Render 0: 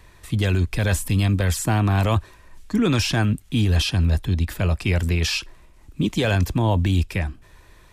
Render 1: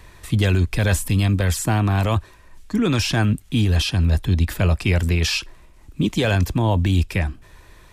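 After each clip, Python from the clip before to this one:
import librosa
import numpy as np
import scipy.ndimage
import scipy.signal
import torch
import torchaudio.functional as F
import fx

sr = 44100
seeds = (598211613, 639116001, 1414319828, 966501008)

y = fx.rider(x, sr, range_db=3, speed_s=0.5)
y = F.gain(torch.from_numpy(y), 2.0).numpy()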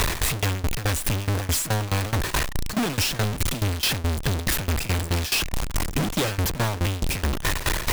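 y = np.sign(x) * np.sqrt(np.mean(np.square(x)))
y = fx.tremolo_shape(y, sr, shape='saw_down', hz=4.7, depth_pct=90)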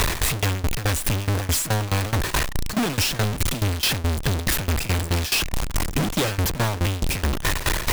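y = fx.delta_hold(x, sr, step_db=-54.5)
y = F.gain(torch.from_numpy(y), 1.5).numpy()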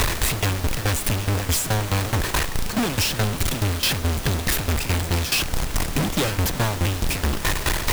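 y = fx.dmg_noise_colour(x, sr, seeds[0], colour='pink', level_db=-33.0)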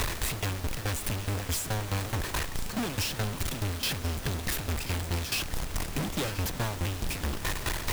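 y = x + 10.0 ** (-15.5 / 20.0) * np.pad(x, (int(1031 * sr / 1000.0), 0))[:len(x)]
y = F.gain(torch.from_numpy(y), -9.0).numpy()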